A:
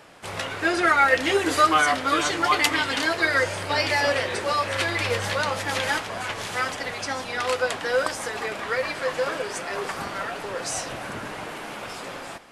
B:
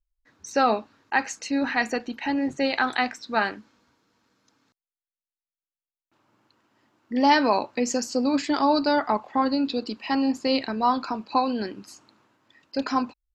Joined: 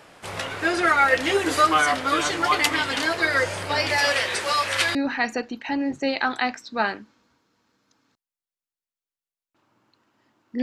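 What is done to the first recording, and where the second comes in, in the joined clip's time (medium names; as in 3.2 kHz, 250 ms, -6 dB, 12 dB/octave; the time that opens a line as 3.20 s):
A
3.98–4.95 s: tilt shelf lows -6 dB, about 940 Hz
4.95 s: go over to B from 1.52 s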